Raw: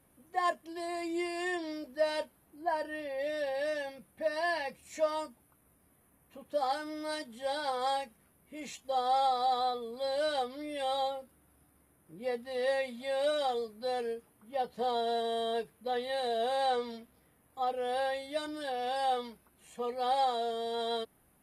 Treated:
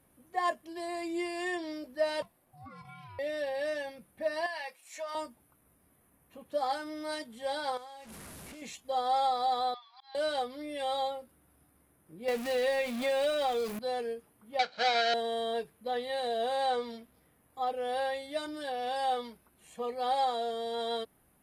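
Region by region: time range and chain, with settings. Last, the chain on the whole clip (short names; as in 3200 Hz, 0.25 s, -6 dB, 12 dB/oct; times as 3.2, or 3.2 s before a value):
2.22–3.19 notch 890 Hz, Q 6.2 + compressor 20:1, threshold -42 dBFS + ring modulator 440 Hz
4.46–5.15 HPF 740 Hz + compressor 5:1, threshold -34 dBFS
7.77–8.62 delta modulation 64 kbps, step -41 dBFS + compressor 16:1, threshold -44 dBFS
9.74–10.15 brick-wall FIR band-pass 720–6100 Hz + auto swell 0.435 s
12.28–13.79 zero-crossing step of -39 dBFS + bell 2500 Hz +5.5 dB 0.26 oct + three-band squash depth 100%
14.59–15.14 half-waves squared off + speaker cabinet 430–4900 Hz, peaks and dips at 950 Hz -8 dB, 1400 Hz +6 dB, 4200 Hz +10 dB + comb 1.3 ms, depth 61%
whole clip: dry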